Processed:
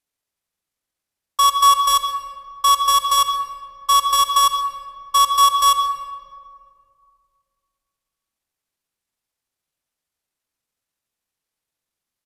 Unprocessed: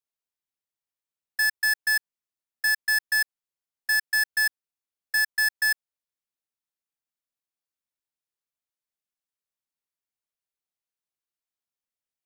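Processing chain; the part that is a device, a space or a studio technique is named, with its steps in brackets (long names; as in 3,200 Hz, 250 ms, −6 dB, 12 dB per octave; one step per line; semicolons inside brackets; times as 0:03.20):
monster voice (pitch shifter −7.5 semitones; low-shelf EQ 200 Hz +4 dB; convolution reverb RT60 2.2 s, pre-delay 49 ms, DRR 6 dB)
level +8 dB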